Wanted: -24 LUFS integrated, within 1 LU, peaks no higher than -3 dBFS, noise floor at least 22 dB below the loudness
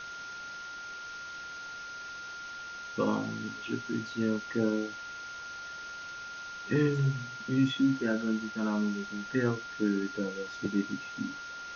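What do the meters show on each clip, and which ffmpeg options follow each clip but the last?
steady tone 1400 Hz; tone level -40 dBFS; noise floor -43 dBFS; noise floor target -56 dBFS; loudness -33.5 LUFS; peak -15.0 dBFS; loudness target -24.0 LUFS
-> -af "bandreject=f=1.4k:w=30"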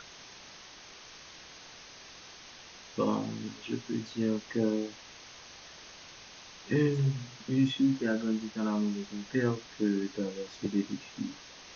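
steady tone none; noise floor -51 dBFS; noise floor target -54 dBFS
-> -af "afftdn=nr=6:nf=-51"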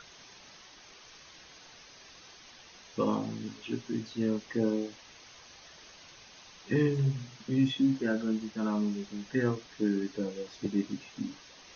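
noise floor -54 dBFS; loudness -32.0 LUFS; peak -15.5 dBFS; loudness target -24.0 LUFS
-> -af "volume=8dB"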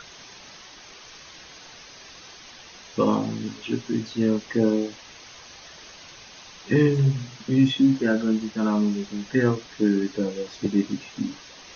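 loudness -24.0 LUFS; peak -7.5 dBFS; noise floor -46 dBFS

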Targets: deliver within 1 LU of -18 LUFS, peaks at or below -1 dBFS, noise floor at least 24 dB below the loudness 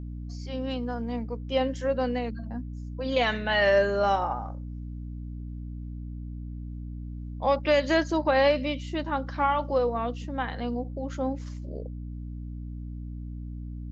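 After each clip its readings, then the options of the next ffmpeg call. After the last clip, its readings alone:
hum 60 Hz; harmonics up to 300 Hz; hum level -34 dBFS; loudness -27.5 LUFS; peak -11.0 dBFS; loudness target -18.0 LUFS
-> -af "bandreject=f=60:t=h:w=4,bandreject=f=120:t=h:w=4,bandreject=f=180:t=h:w=4,bandreject=f=240:t=h:w=4,bandreject=f=300:t=h:w=4"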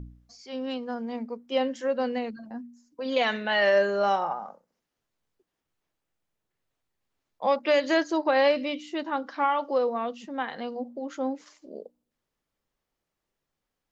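hum none; loudness -27.0 LUFS; peak -11.0 dBFS; loudness target -18.0 LUFS
-> -af "volume=9dB"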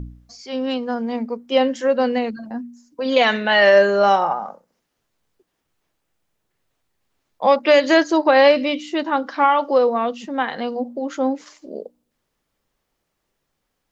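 loudness -18.0 LUFS; peak -2.0 dBFS; noise floor -75 dBFS

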